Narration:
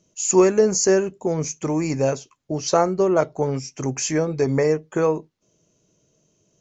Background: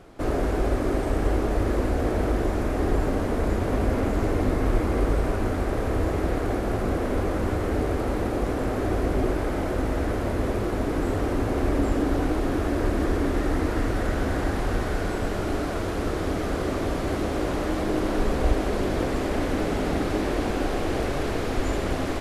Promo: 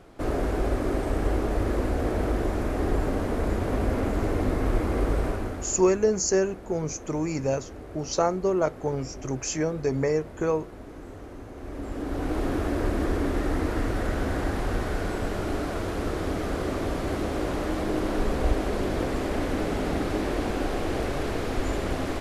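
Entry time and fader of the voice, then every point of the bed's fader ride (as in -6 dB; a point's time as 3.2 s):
5.45 s, -5.5 dB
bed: 5.26 s -2 dB
6.01 s -16.5 dB
11.55 s -16.5 dB
12.4 s -2 dB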